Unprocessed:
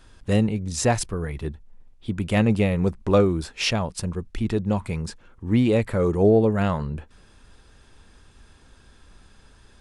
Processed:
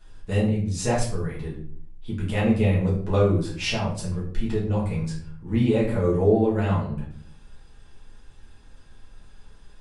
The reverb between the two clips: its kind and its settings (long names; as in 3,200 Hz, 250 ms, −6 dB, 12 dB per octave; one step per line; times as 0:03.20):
rectangular room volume 58 cubic metres, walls mixed, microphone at 1.4 metres
level −9.5 dB